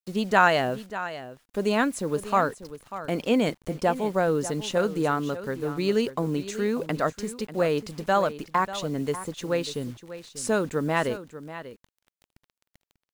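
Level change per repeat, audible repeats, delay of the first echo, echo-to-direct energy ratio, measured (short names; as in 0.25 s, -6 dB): no steady repeat, 1, 0.592 s, -13.5 dB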